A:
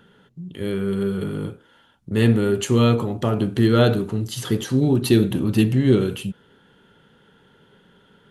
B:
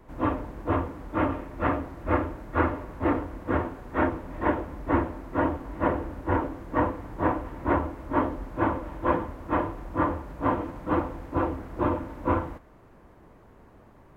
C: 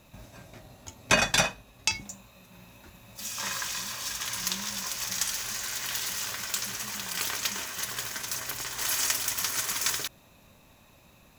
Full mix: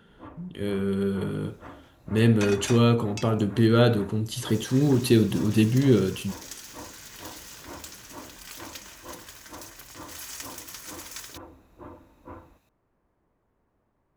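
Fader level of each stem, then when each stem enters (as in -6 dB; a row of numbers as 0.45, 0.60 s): -3.0, -19.0, -11.5 dB; 0.00, 0.00, 1.30 s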